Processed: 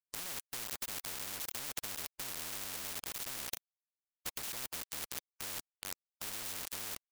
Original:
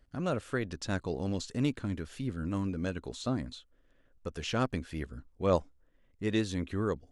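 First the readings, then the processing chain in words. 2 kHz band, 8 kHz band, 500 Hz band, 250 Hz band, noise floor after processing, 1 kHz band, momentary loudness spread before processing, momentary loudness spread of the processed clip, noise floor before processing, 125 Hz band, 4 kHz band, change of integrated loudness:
−4.5 dB, +9.0 dB, −20.0 dB, −24.0 dB, below −85 dBFS, −9.5 dB, 9 LU, 4 LU, −67 dBFS, −23.5 dB, +0.5 dB, −6.0 dB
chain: lower of the sound and its delayed copy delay 0.31 ms
dynamic equaliser 900 Hz, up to +4 dB, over −44 dBFS, Q 0.8
echo with shifted repeats 372 ms, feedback 50%, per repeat +130 Hz, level −23 dB
brickwall limiter −24.5 dBFS, peak gain reduction 11.5 dB
log-companded quantiser 2 bits
every bin compressed towards the loudest bin 10 to 1
level +8.5 dB

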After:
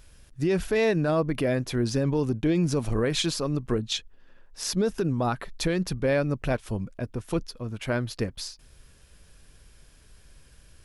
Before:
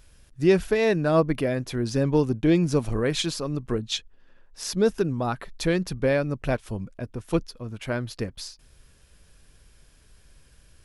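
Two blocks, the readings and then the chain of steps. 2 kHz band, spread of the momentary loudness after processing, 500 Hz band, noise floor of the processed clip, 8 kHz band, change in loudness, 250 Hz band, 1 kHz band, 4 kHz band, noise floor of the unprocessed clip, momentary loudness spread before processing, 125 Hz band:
−1.5 dB, 9 LU, −2.5 dB, −55 dBFS, +1.0 dB, −2.0 dB, −2.0 dB, −1.5 dB, 0.0 dB, −57 dBFS, 13 LU, −0.5 dB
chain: brickwall limiter −17.5 dBFS, peak gain reduction 10 dB
level +1.5 dB

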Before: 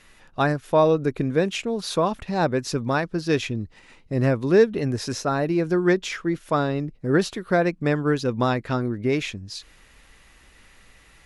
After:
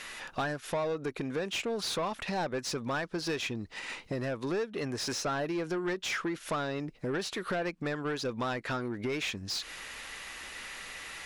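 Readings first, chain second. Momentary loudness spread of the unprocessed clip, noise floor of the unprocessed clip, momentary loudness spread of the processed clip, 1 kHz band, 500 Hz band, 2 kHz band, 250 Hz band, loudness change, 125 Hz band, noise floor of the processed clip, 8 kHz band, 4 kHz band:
9 LU, −54 dBFS, 9 LU, −9.5 dB, −12.0 dB, −6.0 dB, −12.0 dB, −11.0 dB, −14.0 dB, −53 dBFS, −2.5 dB, −2.5 dB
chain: high-shelf EQ 4,100 Hz +8 dB
downward compressor 10 to 1, threshold −33 dBFS, peak gain reduction 21.5 dB
mid-hump overdrive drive 19 dB, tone 3,500 Hz, clips at −22 dBFS
level −1 dB

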